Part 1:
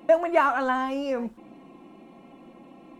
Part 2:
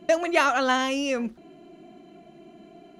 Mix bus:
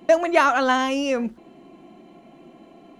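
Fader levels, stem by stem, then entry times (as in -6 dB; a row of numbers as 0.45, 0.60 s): -2.5, -1.0 dB; 0.00, 0.00 s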